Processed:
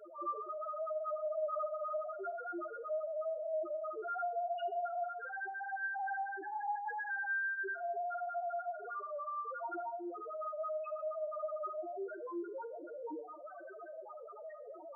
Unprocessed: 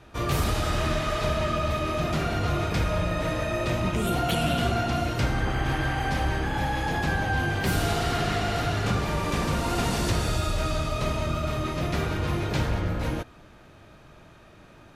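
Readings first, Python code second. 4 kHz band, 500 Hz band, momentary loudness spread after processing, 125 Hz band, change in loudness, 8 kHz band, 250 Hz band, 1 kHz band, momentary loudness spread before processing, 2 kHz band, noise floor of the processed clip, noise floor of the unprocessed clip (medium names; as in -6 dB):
under -30 dB, -8.0 dB, 9 LU, under -40 dB, -13.0 dB, under -40 dB, -22.0 dB, -9.0 dB, 3 LU, -9.5 dB, -50 dBFS, -51 dBFS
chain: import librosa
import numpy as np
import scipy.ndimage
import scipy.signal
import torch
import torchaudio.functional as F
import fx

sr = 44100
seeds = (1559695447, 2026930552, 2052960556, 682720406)

p1 = fx.delta_mod(x, sr, bps=32000, step_db=-29.5)
p2 = scipy.signal.sosfilt(scipy.signal.butter(4, 360.0, 'highpass', fs=sr, output='sos'), p1)
p3 = fx.rider(p2, sr, range_db=10, speed_s=0.5)
p4 = p2 + (p3 * librosa.db_to_amplitude(2.0))
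p5 = fx.quant_dither(p4, sr, seeds[0], bits=8, dither='triangular')
p6 = fx.spec_topn(p5, sr, count=1)
p7 = fx.rev_schroeder(p6, sr, rt60_s=0.61, comb_ms=29, drr_db=16.0)
y = p7 * librosa.db_to_amplitude(-6.0)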